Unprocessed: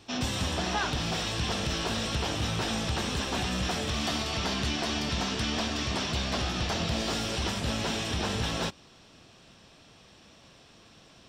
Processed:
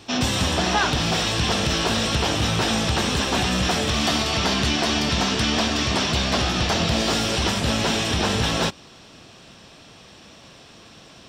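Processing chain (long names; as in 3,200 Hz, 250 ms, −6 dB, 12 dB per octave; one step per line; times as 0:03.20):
low-shelf EQ 67 Hz −5 dB
level +9 dB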